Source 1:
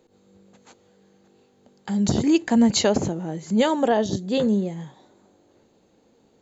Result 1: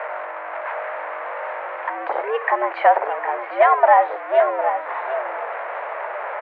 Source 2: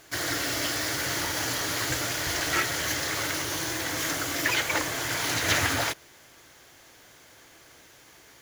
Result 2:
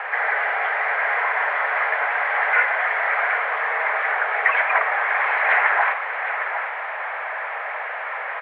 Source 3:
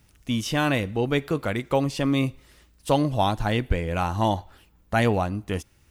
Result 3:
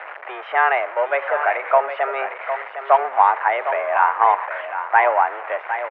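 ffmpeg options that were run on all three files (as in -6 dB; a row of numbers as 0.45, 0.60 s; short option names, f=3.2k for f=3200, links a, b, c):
-af "aeval=exprs='val(0)+0.5*0.0531*sgn(val(0))':c=same,highpass=f=500:t=q:w=0.5412,highpass=f=500:t=q:w=1.307,lowpass=f=2k:t=q:w=0.5176,lowpass=f=2k:t=q:w=0.7071,lowpass=f=2k:t=q:w=1.932,afreqshift=130,aecho=1:1:758:0.335,volume=8dB"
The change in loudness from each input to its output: +0.5, +6.0, +5.5 LU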